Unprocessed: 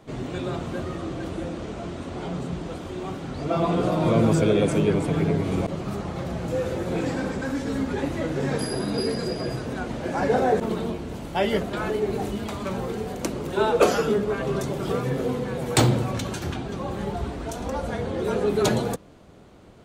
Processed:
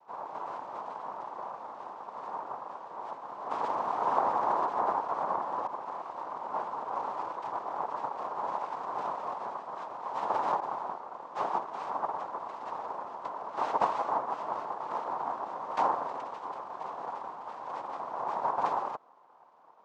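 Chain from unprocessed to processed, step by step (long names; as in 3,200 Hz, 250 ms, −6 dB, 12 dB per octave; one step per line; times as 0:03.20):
cochlear-implant simulation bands 2
resonant band-pass 1,000 Hz, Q 3.5
high-frequency loss of the air 51 metres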